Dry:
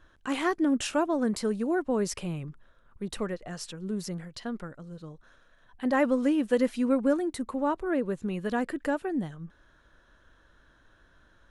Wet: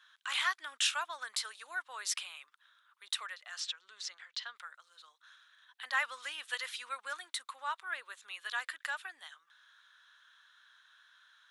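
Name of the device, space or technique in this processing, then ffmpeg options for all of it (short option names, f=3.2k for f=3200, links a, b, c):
headphones lying on a table: -filter_complex "[0:a]highpass=f=1.2k:w=0.5412,highpass=f=1.2k:w=1.3066,equalizer=f=3.6k:t=o:w=0.45:g=9,asettb=1/sr,asplit=3[a][b][c];[a]atrim=end=3.604[d];[b]atrim=start=3.6:end=4.56,asetpts=PTS-STARTPTS,afade=t=in:d=0.004:c=qsin,afade=t=out:st=0.956:d=0.004:c=qsin,lowpass=f=6.8k:w=0.5412,lowpass=f=6.8k:w=1.3066[e];[c]atrim=start=4.556[f];[d][e]acrossfade=d=0.004:c1=hsin:c2=qsin[g];[g][f]acrossfade=d=0.004:c1=qsin:c2=hsin,volume=1dB"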